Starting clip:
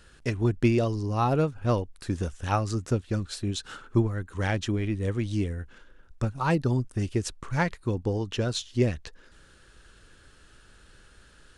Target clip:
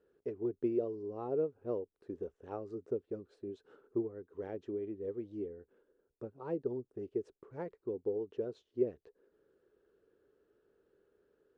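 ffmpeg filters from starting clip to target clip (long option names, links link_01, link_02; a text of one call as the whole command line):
ffmpeg -i in.wav -af "bandpass=frequency=420:width_type=q:width=5.1:csg=0,volume=-1dB" out.wav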